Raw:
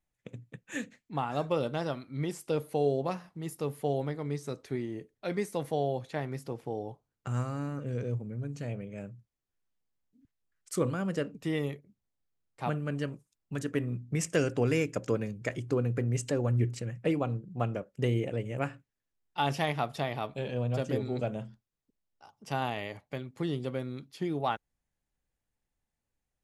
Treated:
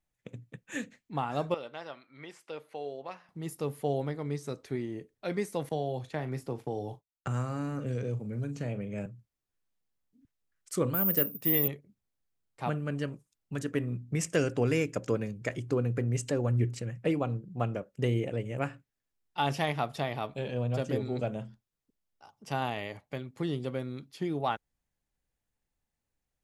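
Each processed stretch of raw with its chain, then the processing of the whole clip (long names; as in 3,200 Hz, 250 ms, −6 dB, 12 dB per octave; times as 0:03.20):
0:01.54–0:03.29: resonant band-pass 1,700 Hz, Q 0.93 + dynamic equaliser 1,400 Hz, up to −5 dB, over −52 dBFS, Q 1.3
0:05.69–0:09.06: downward expander −49 dBFS + double-tracking delay 39 ms −13 dB + multiband upward and downward compressor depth 70%
0:10.94–0:11.68: high-pass filter 59 Hz + high-shelf EQ 9,000 Hz +5 dB + bad sample-rate conversion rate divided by 3×, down filtered, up zero stuff
whole clip: no processing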